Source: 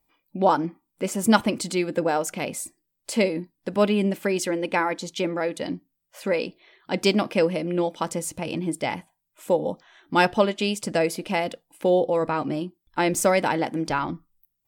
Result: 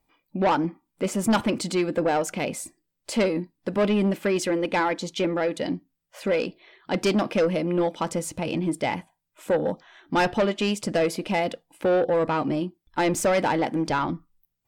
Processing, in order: soft clip -19 dBFS, distortion -11 dB; high shelf 7400 Hz -9 dB; gain +3 dB

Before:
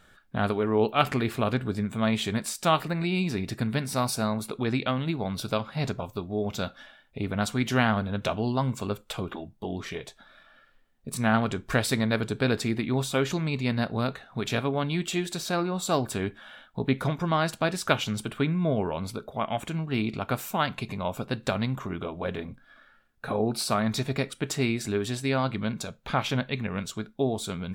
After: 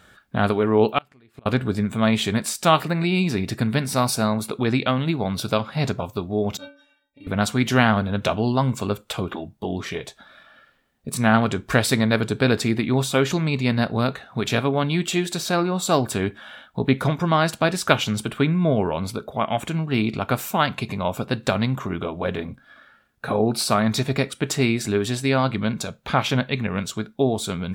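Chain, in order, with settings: HPF 50 Hz; 0.98–1.46 flipped gate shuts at -22 dBFS, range -34 dB; 6.57–7.27 metallic resonator 280 Hz, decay 0.36 s, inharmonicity 0.008; gain +6 dB

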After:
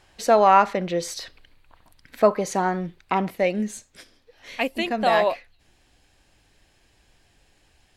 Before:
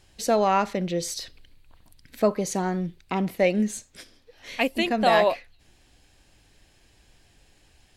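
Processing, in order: bell 1100 Hz +11 dB 2.7 oct, from 3.3 s +3.5 dB; gain -3 dB

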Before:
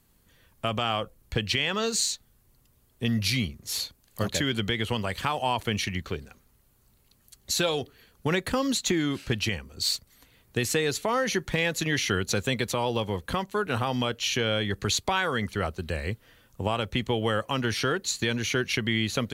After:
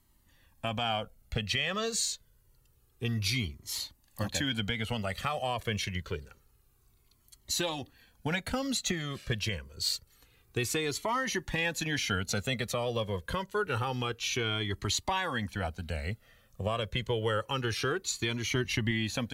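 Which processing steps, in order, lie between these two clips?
18.51–18.91 low shelf 130 Hz +10.5 dB; cascading flanger falling 0.27 Hz

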